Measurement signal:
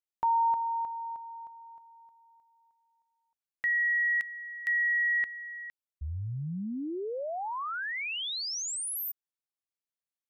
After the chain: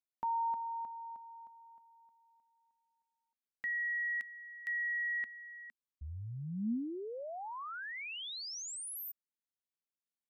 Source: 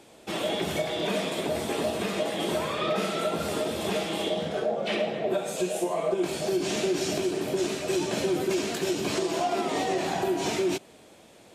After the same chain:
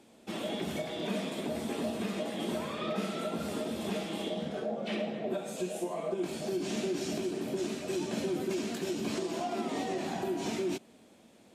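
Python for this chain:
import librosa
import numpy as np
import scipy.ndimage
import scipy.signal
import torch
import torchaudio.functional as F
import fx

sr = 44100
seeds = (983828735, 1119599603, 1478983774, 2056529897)

y = fx.peak_eq(x, sr, hz=230.0, db=10.5, octaves=0.59)
y = y * 10.0 ** (-8.5 / 20.0)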